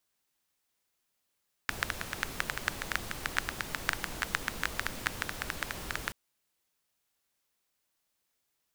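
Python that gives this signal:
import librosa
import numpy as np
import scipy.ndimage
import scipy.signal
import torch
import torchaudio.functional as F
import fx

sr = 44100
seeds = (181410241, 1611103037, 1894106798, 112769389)

y = fx.rain(sr, seeds[0], length_s=4.43, drops_per_s=9.4, hz=1600.0, bed_db=-3)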